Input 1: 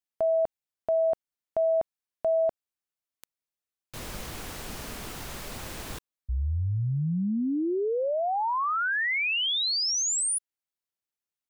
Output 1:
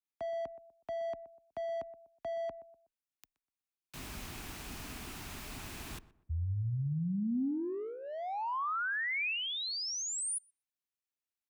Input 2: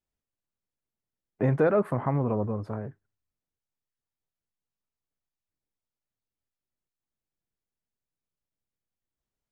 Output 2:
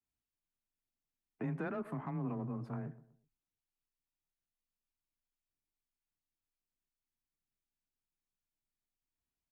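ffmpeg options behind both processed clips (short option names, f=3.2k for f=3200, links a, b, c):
-filter_complex "[0:a]equalizer=f=250:t=o:w=0.33:g=4,equalizer=f=500:t=o:w=0.33:g=-11,equalizer=f=2.5k:t=o:w=0.33:g=4,asplit=2[a][b];[b]adelay=123,lowpass=f=1.4k:p=1,volume=-17dB,asplit=2[c][d];[d]adelay=123,lowpass=f=1.4k:p=1,volume=0.35,asplit=2[e][f];[f]adelay=123,lowpass=f=1.4k:p=1,volume=0.35[g];[c][e][g]amix=inputs=3:normalize=0[h];[a][h]amix=inputs=2:normalize=0,alimiter=limit=-21dB:level=0:latency=1:release=499,acrossover=split=390|770[i][j][k];[j]asoftclip=type=tanh:threshold=-40dB[l];[i][l][k]amix=inputs=3:normalize=0,afreqshift=18,adynamicequalizer=threshold=0.0126:dfrequency=2000:dqfactor=0.7:tfrequency=2000:tqfactor=0.7:attack=5:release=100:ratio=0.375:range=2:mode=cutabove:tftype=highshelf,volume=-6.5dB"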